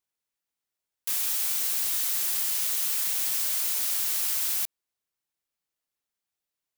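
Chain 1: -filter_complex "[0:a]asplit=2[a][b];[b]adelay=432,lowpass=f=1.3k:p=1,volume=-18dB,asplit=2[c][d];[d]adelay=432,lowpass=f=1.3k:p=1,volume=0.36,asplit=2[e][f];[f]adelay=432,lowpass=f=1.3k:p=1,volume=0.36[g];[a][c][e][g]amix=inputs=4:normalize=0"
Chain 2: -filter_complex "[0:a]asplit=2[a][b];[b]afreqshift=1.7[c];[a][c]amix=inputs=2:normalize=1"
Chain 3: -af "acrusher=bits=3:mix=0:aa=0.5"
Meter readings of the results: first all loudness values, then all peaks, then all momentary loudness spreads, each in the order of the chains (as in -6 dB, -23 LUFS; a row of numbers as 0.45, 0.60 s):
-24.5, -27.5, -25.0 LUFS; -14.0, -17.0, -16.0 dBFS; 3, 3, 3 LU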